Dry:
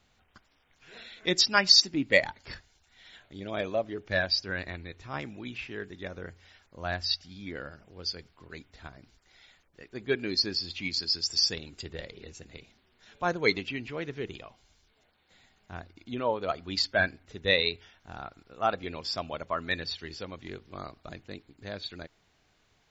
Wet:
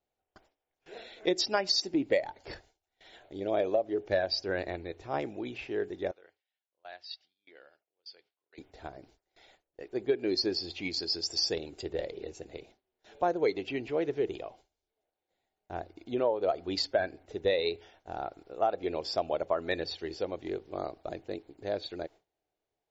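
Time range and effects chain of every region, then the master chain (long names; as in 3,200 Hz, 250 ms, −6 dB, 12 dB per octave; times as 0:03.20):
0:06.11–0:08.58: low-pass filter 3,800 Hz 24 dB per octave + first difference
whole clip: noise gate with hold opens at −46 dBFS; flat-topped bell 510 Hz +12 dB; downward compressor 10 to 1, threshold −20 dBFS; level −3.5 dB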